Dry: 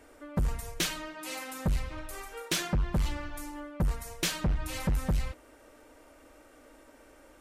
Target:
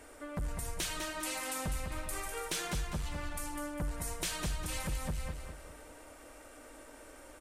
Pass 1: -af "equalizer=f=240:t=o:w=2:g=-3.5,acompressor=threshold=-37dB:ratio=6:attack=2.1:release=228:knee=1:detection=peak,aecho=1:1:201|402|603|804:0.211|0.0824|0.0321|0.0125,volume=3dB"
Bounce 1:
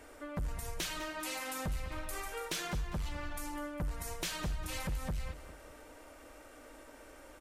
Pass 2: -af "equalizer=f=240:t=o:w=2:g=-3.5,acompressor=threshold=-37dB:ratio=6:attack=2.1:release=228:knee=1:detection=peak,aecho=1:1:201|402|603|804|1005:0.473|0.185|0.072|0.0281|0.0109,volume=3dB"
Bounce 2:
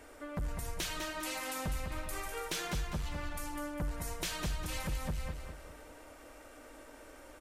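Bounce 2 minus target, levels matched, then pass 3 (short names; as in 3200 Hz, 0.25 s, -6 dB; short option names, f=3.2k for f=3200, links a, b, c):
8000 Hz band -3.0 dB
-af "equalizer=f=240:t=o:w=2:g=-3.5,acompressor=threshold=-37dB:ratio=6:attack=2.1:release=228:knee=1:detection=peak,equalizer=f=8.9k:t=o:w=0.56:g=6,aecho=1:1:201|402|603|804|1005:0.473|0.185|0.072|0.0281|0.0109,volume=3dB"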